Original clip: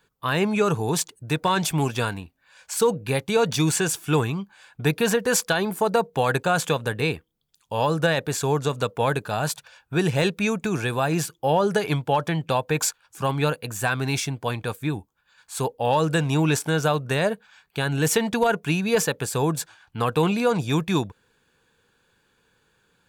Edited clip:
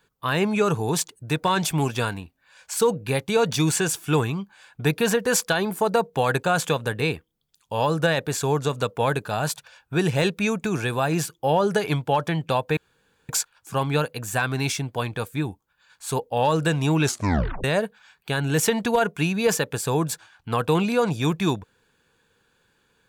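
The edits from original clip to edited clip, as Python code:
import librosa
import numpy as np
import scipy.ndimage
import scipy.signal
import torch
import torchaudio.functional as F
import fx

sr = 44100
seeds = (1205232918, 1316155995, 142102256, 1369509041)

y = fx.edit(x, sr, fx.insert_room_tone(at_s=12.77, length_s=0.52),
    fx.tape_stop(start_s=16.52, length_s=0.6), tone=tone)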